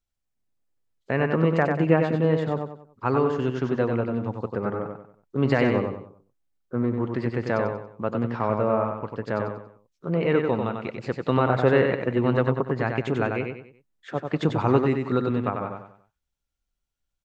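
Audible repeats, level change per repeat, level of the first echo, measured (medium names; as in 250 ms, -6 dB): 4, -9.0 dB, -5.0 dB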